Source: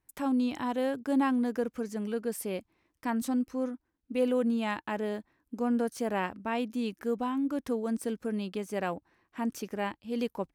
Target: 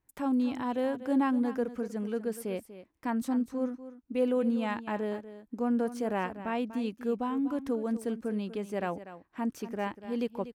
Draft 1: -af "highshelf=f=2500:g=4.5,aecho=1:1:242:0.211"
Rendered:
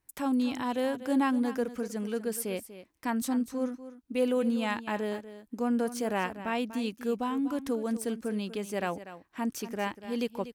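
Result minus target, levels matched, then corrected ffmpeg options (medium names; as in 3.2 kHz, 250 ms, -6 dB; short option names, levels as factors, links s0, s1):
4 kHz band +6.5 dB
-af "highshelf=f=2500:g=-6.5,aecho=1:1:242:0.211"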